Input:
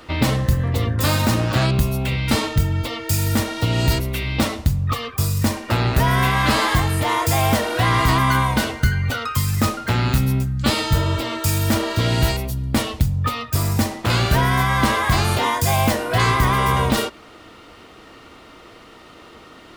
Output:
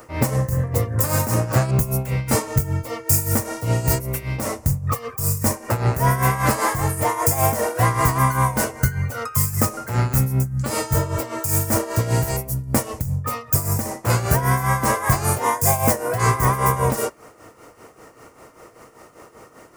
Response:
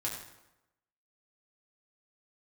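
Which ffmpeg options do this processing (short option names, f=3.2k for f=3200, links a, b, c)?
-af "tremolo=f=5.1:d=0.7,aexciter=amount=6.4:drive=6.4:freq=4.9k,equalizer=f=125:t=o:w=1:g=9,equalizer=f=500:t=o:w=1:g=10,equalizer=f=1k:t=o:w=1:g=6,equalizer=f=2k:t=o:w=1:g=5,equalizer=f=4k:t=o:w=1:g=-10,equalizer=f=16k:t=o:w=1:g=-6,volume=-6dB"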